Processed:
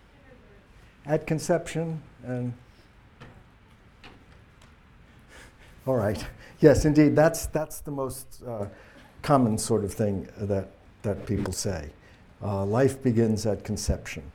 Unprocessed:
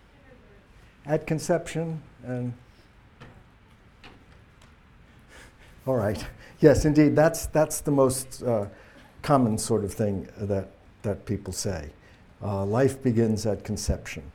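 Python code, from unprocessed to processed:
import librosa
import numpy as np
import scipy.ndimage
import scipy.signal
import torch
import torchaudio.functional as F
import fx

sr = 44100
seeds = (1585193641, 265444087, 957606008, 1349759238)

y = fx.graphic_eq_10(x, sr, hz=(125, 250, 500, 1000, 2000, 4000, 8000), db=(-7, -8, -9, -3, -9, -6, -11), at=(7.56, 8.59), fade=0.02)
y = fx.sustainer(y, sr, db_per_s=34.0, at=(11.14, 11.54))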